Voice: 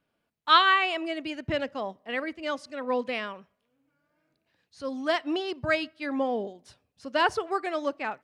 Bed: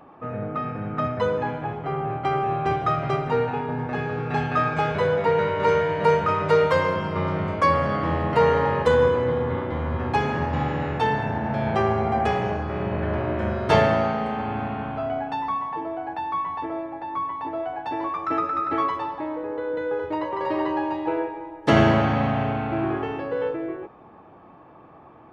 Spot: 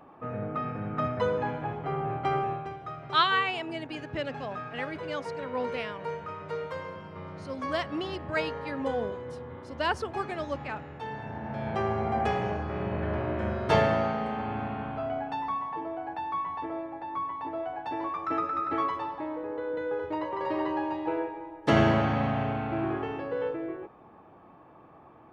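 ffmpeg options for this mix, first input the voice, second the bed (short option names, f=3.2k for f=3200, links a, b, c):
-filter_complex "[0:a]adelay=2650,volume=-4.5dB[a];[1:a]volume=7.5dB,afade=t=out:st=2.38:d=0.32:silence=0.237137,afade=t=in:st=11:d=1.22:silence=0.266073[b];[a][b]amix=inputs=2:normalize=0"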